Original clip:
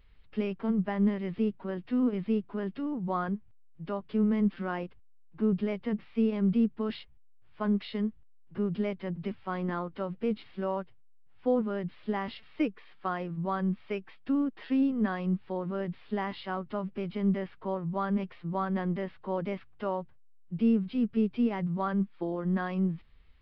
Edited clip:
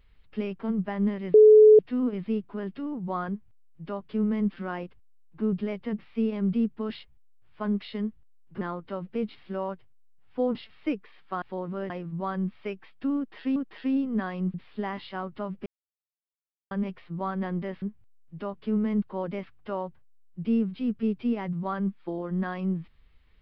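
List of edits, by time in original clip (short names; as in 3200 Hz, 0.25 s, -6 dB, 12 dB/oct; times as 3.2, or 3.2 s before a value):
1.34–1.79 bleep 429 Hz -10 dBFS
3.29–4.49 copy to 19.16
8.61–9.69 cut
11.63–12.28 cut
14.42–14.81 loop, 2 plays
15.4–15.88 move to 13.15
17–18.05 mute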